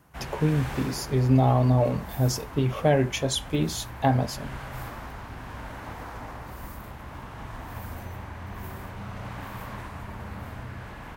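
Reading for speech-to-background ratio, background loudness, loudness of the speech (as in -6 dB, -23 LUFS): 14.0 dB, -39.0 LUFS, -25.0 LUFS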